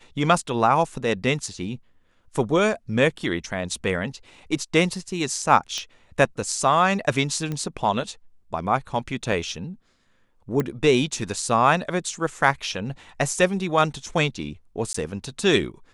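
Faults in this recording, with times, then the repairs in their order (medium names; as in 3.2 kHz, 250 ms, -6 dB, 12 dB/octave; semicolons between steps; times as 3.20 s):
5.78 s: pop -16 dBFS
7.52 s: pop -17 dBFS
9.32 s: dropout 3 ms
10.60 s: pop -12 dBFS
14.93–14.94 s: dropout 14 ms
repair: de-click; interpolate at 9.32 s, 3 ms; interpolate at 14.93 s, 14 ms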